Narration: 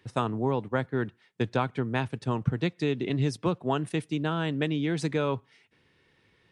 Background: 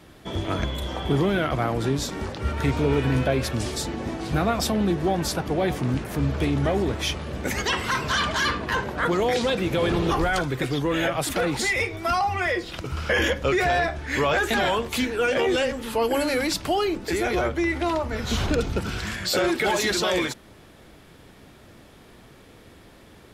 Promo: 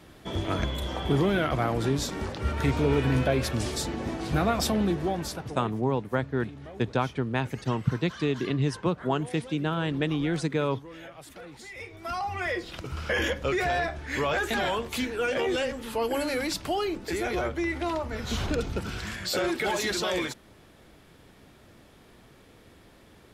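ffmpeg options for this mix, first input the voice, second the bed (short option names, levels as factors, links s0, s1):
-filter_complex "[0:a]adelay=5400,volume=1.06[s0];[1:a]volume=4.73,afade=t=out:st=4.75:d=0.96:silence=0.11885,afade=t=in:st=11.7:d=0.83:silence=0.16788[s1];[s0][s1]amix=inputs=2:normalize=0"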